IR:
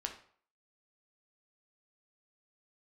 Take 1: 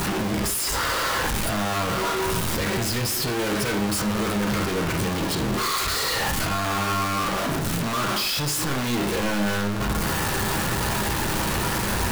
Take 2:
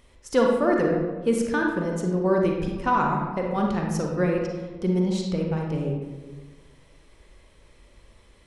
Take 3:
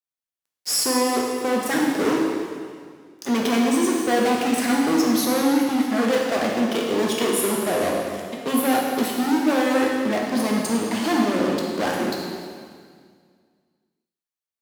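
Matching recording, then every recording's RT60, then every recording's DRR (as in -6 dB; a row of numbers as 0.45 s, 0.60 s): 1; 0.50 s, 1.4 s, 1.9 s; 3.0 dB, 0.0 dB, -2.0 dB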